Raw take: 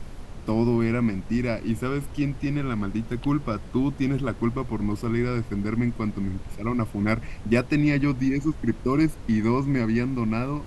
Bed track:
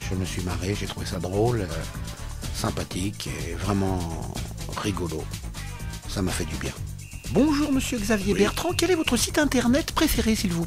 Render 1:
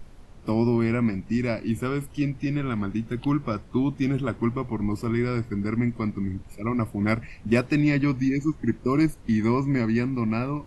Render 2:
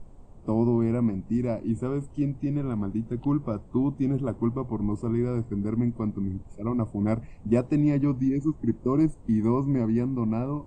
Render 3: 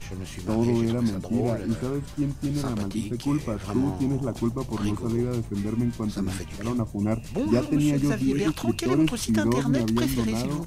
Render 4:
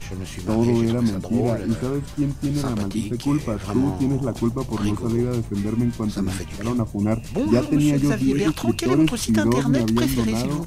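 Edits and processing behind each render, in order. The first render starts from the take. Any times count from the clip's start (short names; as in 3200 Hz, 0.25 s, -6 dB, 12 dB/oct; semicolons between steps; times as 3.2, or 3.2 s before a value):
noise print and reduce 9 dB
Chebyshev low-pass 8500 Hz, order 6; band shelf 2900 Hz -15.5 dB 2.5 oct
add bed track -7.5 dB
gain +4 dB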